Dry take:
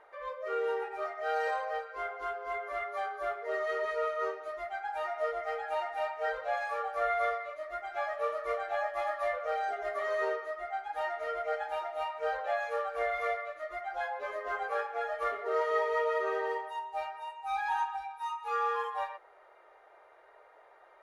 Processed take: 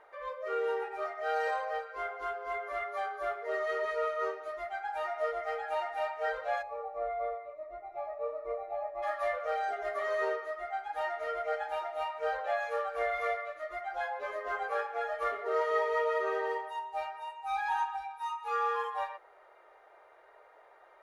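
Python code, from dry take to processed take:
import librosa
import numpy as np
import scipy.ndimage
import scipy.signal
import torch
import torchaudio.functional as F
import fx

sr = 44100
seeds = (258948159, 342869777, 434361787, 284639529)

y = fx.moving_average(x, sr, points=28, at=(6.61, 9.02), fade=0.02)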